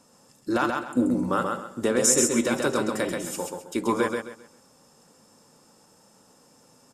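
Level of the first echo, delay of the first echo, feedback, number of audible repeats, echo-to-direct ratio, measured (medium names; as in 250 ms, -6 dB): -4.0 dB, 132 ms, 28%, 3, -3.5 dB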